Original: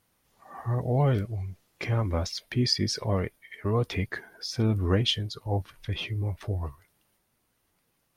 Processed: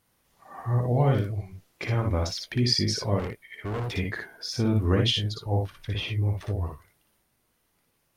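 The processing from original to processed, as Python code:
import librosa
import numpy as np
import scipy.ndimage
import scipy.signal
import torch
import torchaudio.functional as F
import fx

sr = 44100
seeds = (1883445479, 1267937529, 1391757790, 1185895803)

y = fx.room_early_taps(x, sr, ms=(58, 76), db=(-3.5, -13.0))
y = fx.overload_stage(y, sr, gain_db=28.0, at=(3.19, 3.97))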